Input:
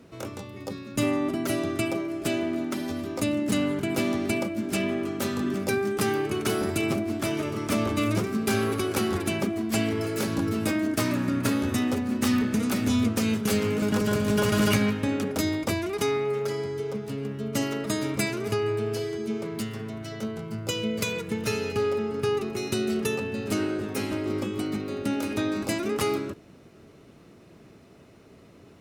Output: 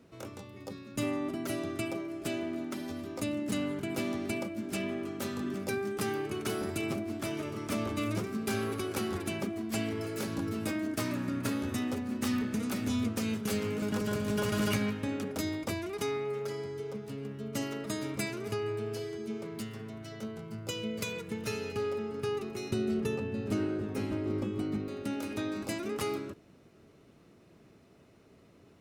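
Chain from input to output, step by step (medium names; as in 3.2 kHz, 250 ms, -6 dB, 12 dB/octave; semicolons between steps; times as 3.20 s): 22.71–24.88 s: tilt EQ -2 dB/octave; trim -7.5 dB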